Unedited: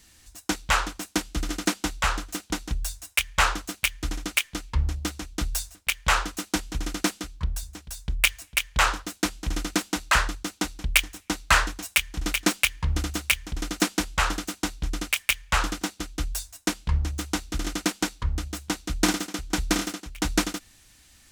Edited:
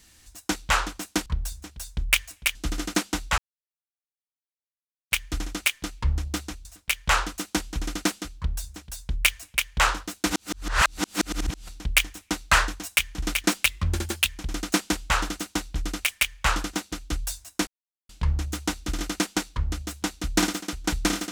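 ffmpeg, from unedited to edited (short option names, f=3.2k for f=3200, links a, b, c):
-filter_complex "[0:a]asplit=11[a][b][c][d][e][f][g][h][i][j][k];[a]atrim=end=1.262[l];[b]atrim=start=7.368:end=8.662[m];[c]atrim=start=1.258:end=2.09,asetpts=PTS-STARTPTS,afade=t=out:st=0.828:d=0.004:c=hsin[n];[d]atrim=start=2.09:end=3.82,asetpts=PTS-STARTPTS,volume=0[o];[e]atrim=start=3.82:end=5.362,asetpts=PTS-STARTPTS,afade=t=in:d=0.004:c=hsin[p];[f]atrim=start=5.638:end=9.292[q];[g]atrim=start=9.288:end=10.672,asetpts=PTS-STARTPTS,areverse[r];[h]atrim=start=10.668:end=12.654[s];[i]atrim=start=12.65:end=13.37,asetpts=PTS-STARTPTS,asetrate=50274,aresample=44100[t];[j]atrim=start=13.366:end=16.75,asetpts=PTS-STARTPTS,afade=t=out:st=3.38:d=0.004:c=hsin,apad=pad_dur=0.42[u];[k]atrim=start=16.75,asetpts=PTS-STARTPTS,afade=t=in:d=0.004:c=hsin[v];[l][m]acrossfade=d=0.004:c1=hsin:c2=hsin[w];[n][o][p]concat=n=3:v=0:a=1[x];[w][x]acrossfade=d=0.004:c1=hsin:c2=hsin[y];[y][q]acrossfade=d=0.004:c1=hsin:c2=hsin[z];[z][r]acrossfade=d=0.004:c1=hsin:c2=hsin[aa];[aa][s]acrossfade=d=0.004:c1=hsin:c2=hsin[ab];[ab][t]acrossfade=d=0.004:c1=hsin:c2=hsin[ac];[u][v]concat=n=2:v=0:a=1[ad];[ac][ad]acrossfade=d=0.004:c1=hsin:c2=hsin"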